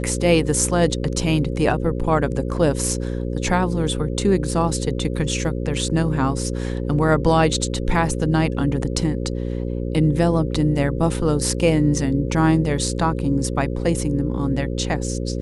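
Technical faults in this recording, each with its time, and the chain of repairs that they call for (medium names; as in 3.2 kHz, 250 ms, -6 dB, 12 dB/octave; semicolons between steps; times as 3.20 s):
buzz 60 Hz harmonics 9 -25 dBFS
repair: de-hum 60 Hz, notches 9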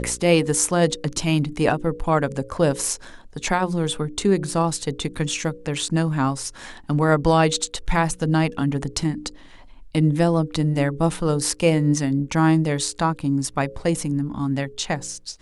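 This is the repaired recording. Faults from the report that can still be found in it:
nothing left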